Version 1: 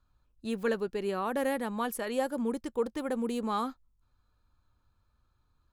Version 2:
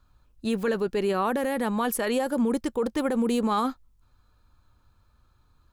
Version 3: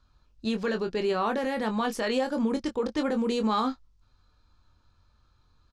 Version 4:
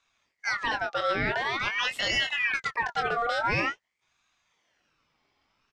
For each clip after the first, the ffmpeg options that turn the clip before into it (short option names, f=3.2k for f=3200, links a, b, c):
-af "alimiter=level_in=2dB:limit=-24dB:level=0:latency=1:release=14,volume=-2dB,volume=9dB"
-filter_complex "[0:a]lowpass=f=5.3k:t=q:w=1.9,asplit=2[a][b];[b]adelay=23,volume=-7dB[c];[a][c]amix=inputs=2:normalize=0,volume=-2.5dB"
-af "highpass=170,lowpass=3k,aexciter=amount=2.6:drive=3.8:freq=2.1k,aeval=exprs='val(0)*sin(2*PI*1700*n/s+1700*0.45/0.47*sin(2*PI*0.47*n/s))':c=same,volume=2.5dB"